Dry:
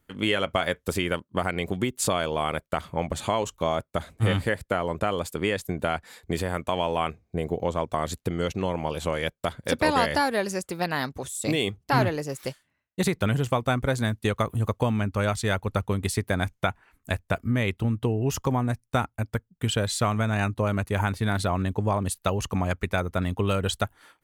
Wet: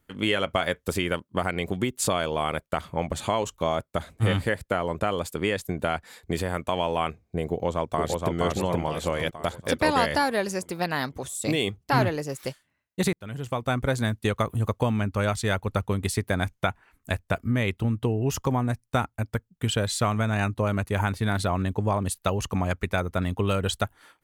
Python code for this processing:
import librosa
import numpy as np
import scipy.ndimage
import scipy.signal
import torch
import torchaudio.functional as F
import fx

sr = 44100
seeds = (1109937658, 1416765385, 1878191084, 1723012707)

y = fx.echo_throw(x, sr, start_s=7.5, length_s=0.86, ms=470, feedback_pct=50, wet_db=-2.0)
y = fx.edit(y, sr, fx.fade_in_span(start_s=13.13, length_s=0.69), tone=tone)